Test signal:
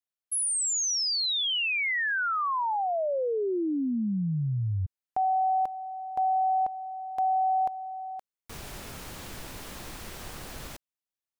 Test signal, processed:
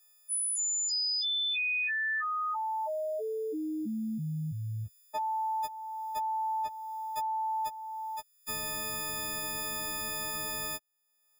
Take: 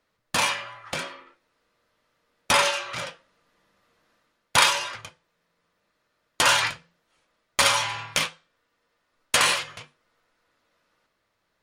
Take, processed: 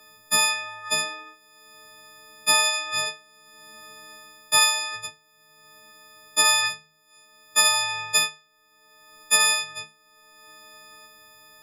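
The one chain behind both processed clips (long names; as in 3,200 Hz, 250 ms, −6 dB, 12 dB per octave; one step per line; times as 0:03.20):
every partial snapped to a pitch grid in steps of 6 semitones
multiband upward and downward compressor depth 70%
level −6.5 dB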